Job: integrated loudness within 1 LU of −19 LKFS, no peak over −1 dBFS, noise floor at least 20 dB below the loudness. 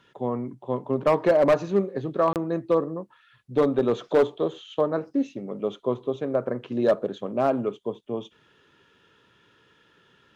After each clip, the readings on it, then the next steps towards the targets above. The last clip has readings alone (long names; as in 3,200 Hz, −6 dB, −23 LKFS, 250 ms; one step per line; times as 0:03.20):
share of clipped samples 0.6%; peaks flattened at −13.0 dBFS; number of dropouts 1; longest dropout 28 ms; integrated loudness −25.5 LKFS; sample peak −13.0 dBFS; target loudness −19.0 LKFS
→ clipped peaks rebuilt −13 dBFS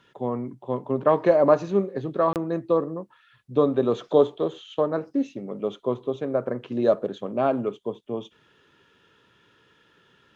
share of clipped samples 0.0%; number of dropouts 1; longest dropout 28 ms
→ repair the gap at 0:02.33, 28 ms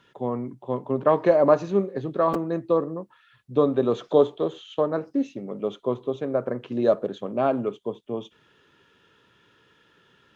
number of dropouts 0; integrated loudness −25.0 LKFS; sample peak −5.0 dBFS; target loudness −19.0 LKFS
→ level +6 dB
brickwall limiter −1 dBFS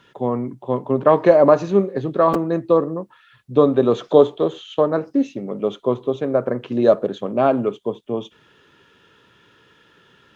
integrated loudness −19.0 LKFS; sample peak −1.0 dBFS; background noise floor −55 dBFS